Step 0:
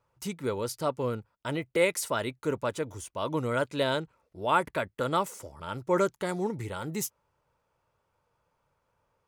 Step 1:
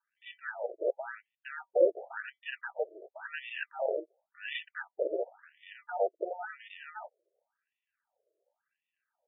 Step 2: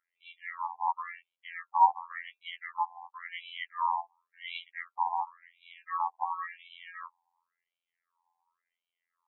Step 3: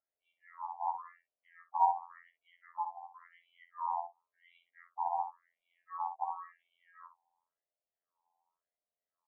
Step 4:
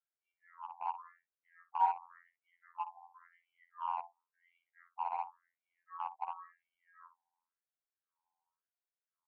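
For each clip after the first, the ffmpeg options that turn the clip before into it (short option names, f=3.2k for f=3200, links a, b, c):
-af "lowpass=f=8.1k:w=0.5412,lowpass=f=8.1k:w=1.3066,acrusher=samples=41:mix=1:aa=0.000001,afftfilt=real='re*between(b*sr/1024,460*pow(2600/460,0.5+0.5*sin(2*PI*0.93*pts/sr))/1.41,460*pow(2600/460,0.5+0.5*sin(2*PI*0.93*pts/sr))*1.41)':imag='im*between(b*sr/1024,460*pow(2600/460,0.5+0.5*sin(2*PI*0.93*pts/sr))/1.41,460*pow(2600/460,0.5+0.5*sin(2*PI*0.93*pts/sr))*1.41)':win_size=1024:overlap=0.75,volume=1.5dB"
-af "afreqshift=400,afftfilt=real='hypot(re,im)*cos(PI*b)':imag='0':win_size=2048:overlap=0.75,highshelf=f=2.9k:g=-11.5,volume=6.5dB"
-filter_complex "[0:a]lowpass=f=660:t=q:w=4.9,asplit=2[a][b];[b]aecho=0:1:11|58:0.447|0.299[c];[a][c]amix=inputs=2:normalize=0,volume=-4dB"
-filter_complex "[0:a]asplit=2[a][b];[b]acrusher=bits=4:mix=0:aa=0.5,volume=-4dB[c];[a][c]amix=inputs=2:normalize=0,highpass=f=450:w=0.5412,highpass=f=450:w=1.3066,equalizer=f=610:t=q:w=4:g=-9,equalizer=f=1k:t=q:w=4:g=3,equalizer=f=1.5k:t=q:w=4:g=10,lowpass=f=2.5k:w=0.5412,lowpass=f=2.5k:w=1.3066,volume=-8dB"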